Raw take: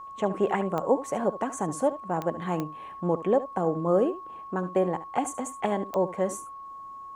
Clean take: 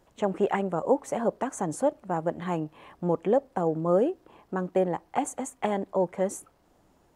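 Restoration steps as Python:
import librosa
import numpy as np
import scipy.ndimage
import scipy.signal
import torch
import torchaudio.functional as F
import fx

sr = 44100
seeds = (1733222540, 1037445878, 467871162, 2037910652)

y = fx.fix_declick_ar(x, sr, threshold=10.0)
y = fx.notch(y, sr, hz=1100.0, q=30.0)
y = fx.fix_echo_inverse(y, sr, delay_ms=72, level_db=-14.5)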